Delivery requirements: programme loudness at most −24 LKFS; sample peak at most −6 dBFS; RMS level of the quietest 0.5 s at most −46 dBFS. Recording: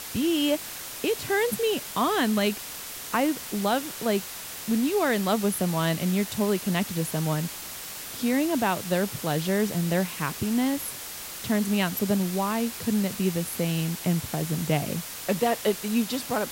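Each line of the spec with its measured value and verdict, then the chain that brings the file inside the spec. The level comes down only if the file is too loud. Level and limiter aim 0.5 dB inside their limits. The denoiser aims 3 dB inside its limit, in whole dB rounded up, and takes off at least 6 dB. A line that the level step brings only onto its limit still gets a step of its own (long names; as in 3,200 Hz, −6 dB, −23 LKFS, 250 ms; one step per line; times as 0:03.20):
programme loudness −26.5 LKFS: in spec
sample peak −10.5 dBFS: in spec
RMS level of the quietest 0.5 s −38 dBFS: out of spec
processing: broadband denoise 11 dB, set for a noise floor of −38 dBFS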